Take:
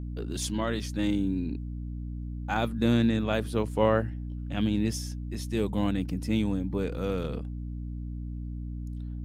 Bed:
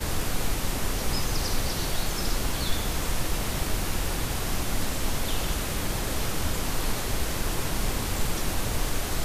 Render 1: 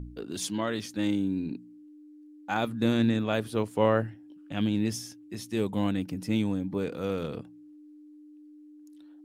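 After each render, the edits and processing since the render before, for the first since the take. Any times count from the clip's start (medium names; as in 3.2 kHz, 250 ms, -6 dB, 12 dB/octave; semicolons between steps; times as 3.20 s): de-hum 60 Hz, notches 4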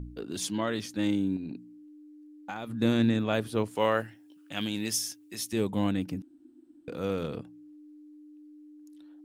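1.36–2.70 s: compression, threshold -33 dBFS; 3.75–5.53 s: tilt EQ +3 dB/octave; 6.22–6.88 s: room tone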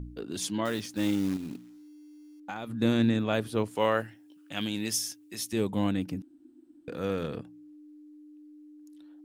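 0.65–2.40 s: short-mantissa float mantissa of 2-bit; 6.89–7.43 s: peaking EQ 1.7 kHz +8 dB 0.26 oct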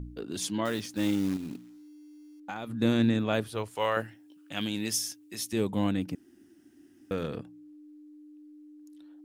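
3.44–3.97 s: peaking EQ 240 Hz -11.5 dB 1.5 oct; 6.15–7.11 s: room tone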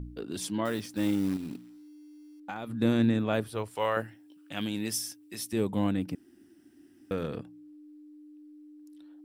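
dynamic bell 3.7 kHz, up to -4 dB, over -45 dBFS, Q 0.76; band-stop 6.6 kHz, Q 9.3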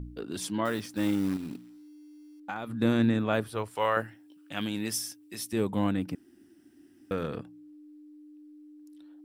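dynamic bell 1.3 kHz, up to +4 dB, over -49 dBFS, Q 1.1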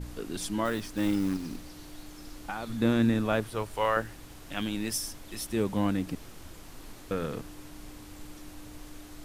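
add bed -19.5 dB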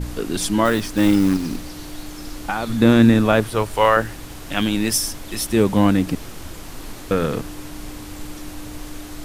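trim +12 dB; peak limiter -2 dBFS, peak gain reduction 2.5 dB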